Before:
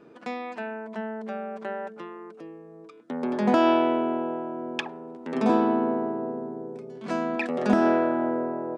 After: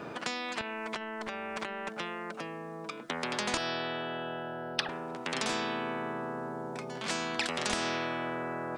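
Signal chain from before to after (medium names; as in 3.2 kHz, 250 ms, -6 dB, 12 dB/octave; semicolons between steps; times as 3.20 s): 0.61–1.89 s: compressor with a negative ratio -38 dBFS, ratio -1; 3.57–4.89 s: static phaser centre 1.5 kHz, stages 8; spectrum-flattening compressor 4:1; trim -2.5 dB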